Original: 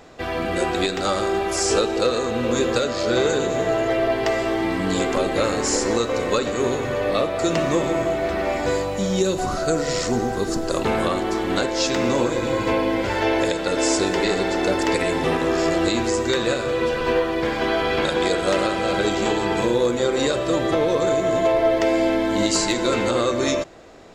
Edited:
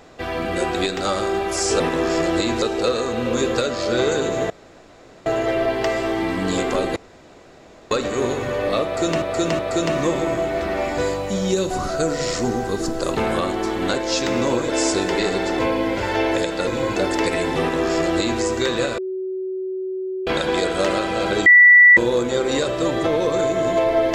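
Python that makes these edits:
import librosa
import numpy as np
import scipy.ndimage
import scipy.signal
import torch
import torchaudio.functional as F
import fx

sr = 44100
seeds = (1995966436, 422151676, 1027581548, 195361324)

y = fx.edit(x, sr, fx.insert_room_tone(at_s=3.68, length_s=0.76),
    fx.room_tone_fill(start_s=5.38, length_s=0.95),
    fx.repeat(start_s=7.27, length_s=0.37, count=3),
    fx.swap(start_s=12.37, length_s=0.29, other_s=13.74, other_length_s=0.9),
    fx.duplicate(start_s=15.28, length_s=0.82, to_s=1.8),
    fx.bleep(start_s=16.66, length_s=1.29, hz=376.0, db=-23.5),
    fx.bleep(start_s=19.14, length_s=0.51, hz=1960.0, db=-6.0), tone=tone)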